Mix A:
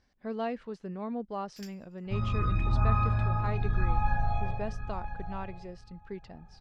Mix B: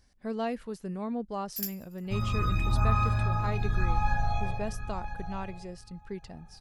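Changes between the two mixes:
speech: add bass shelf 130 Hz +9 dB; second sound: add treble shelf 3.8 kHz +8 dB; master: remove distance through air 150 m

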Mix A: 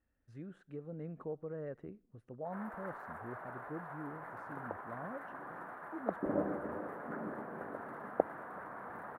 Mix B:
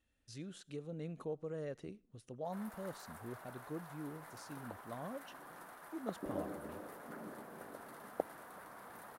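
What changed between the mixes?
background -7.0 dB; master: remove FFT filter 1.7 kHz 0 dB, 3.2 kHz -18 dB, 4.8 kHz -26 dB, 13 kHz -23 dB

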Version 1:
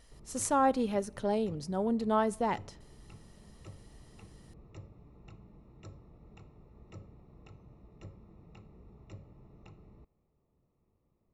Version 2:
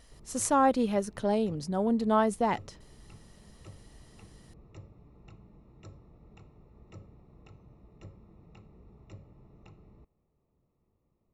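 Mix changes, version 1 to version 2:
speech +5.0 dB; reverb: off

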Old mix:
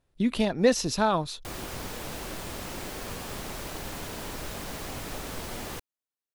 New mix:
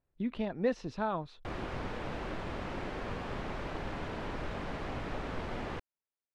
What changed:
speech -9.0 dB; master: add low-pass 2.3 kHz 12 dB/octave

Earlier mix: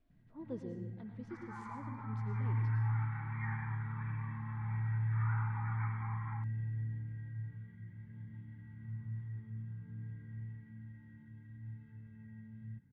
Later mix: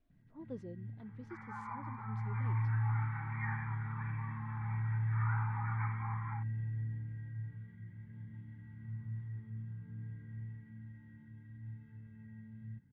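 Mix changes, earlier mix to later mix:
second sound +5.0 dB; reverb: off

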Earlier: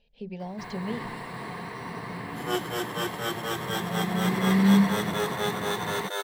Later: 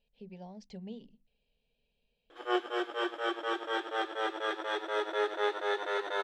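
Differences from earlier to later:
speech -10.5 dB; first sound: muted; second sound: add band-pass 250–2600 Hz

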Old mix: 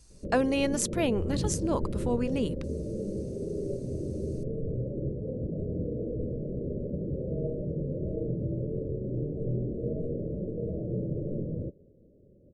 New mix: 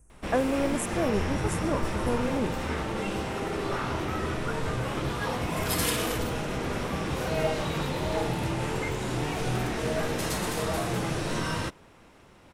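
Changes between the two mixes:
speech: add Butterworth band-stop 4.1 kHz, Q 0.6; first sound: remove rippled Chebyshev low-pass 590 Hz, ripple 3 dB

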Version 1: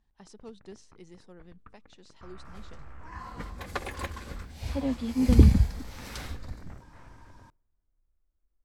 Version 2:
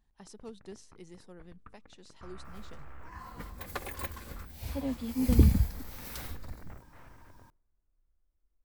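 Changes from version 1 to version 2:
second sound -4.5 dB; master: remove low-pass 7.4 kHz 12 dB/octave

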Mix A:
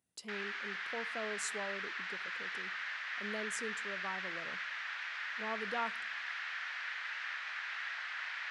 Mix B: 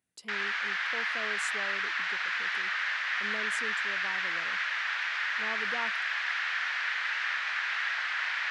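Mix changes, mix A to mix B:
background +10.0 dB; reverb: off

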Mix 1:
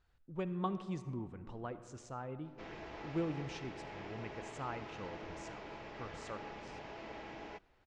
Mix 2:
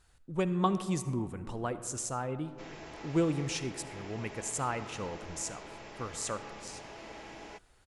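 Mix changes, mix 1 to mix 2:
speech +8.0 dB; master: remove distance through air 170 m

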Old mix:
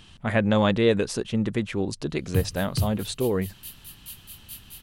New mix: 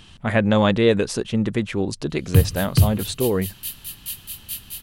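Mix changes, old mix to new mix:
speech +3.5 dB; background +10.0 dB

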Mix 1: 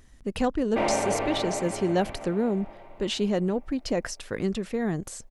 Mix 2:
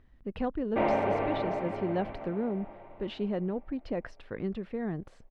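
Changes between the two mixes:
speech -5.5 dB; master: add distance through air 380 m

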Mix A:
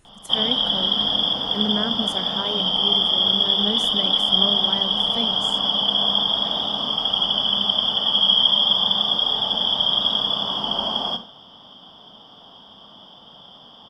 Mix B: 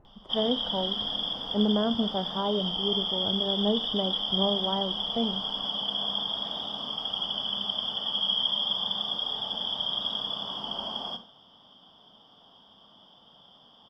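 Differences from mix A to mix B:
speech: add resonant low-pass 810 Hz, resonance Q 1.7; background -10.5 dB

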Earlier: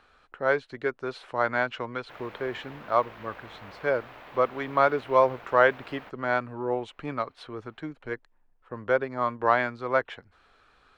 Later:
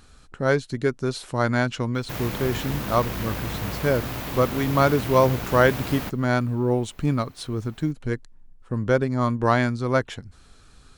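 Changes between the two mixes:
background +9.5 dB; master: remove three-band isolator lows -18 dB, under 420 Hz, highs -24 dB, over 3.2 kHz

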